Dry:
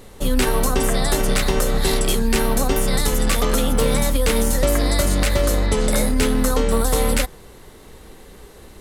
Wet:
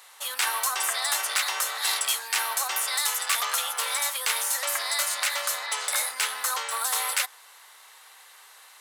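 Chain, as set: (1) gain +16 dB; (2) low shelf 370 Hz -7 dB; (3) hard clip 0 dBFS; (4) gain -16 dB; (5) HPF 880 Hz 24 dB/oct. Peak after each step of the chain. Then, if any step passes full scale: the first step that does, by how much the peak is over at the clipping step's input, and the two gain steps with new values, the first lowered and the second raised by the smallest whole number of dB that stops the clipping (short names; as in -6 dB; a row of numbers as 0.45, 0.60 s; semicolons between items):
+8.0, +7.5, 0.0, -16.0, -10.0 dBFS; step 1, 7.5 dB; step 1 +8 dB, step 4 -8 dB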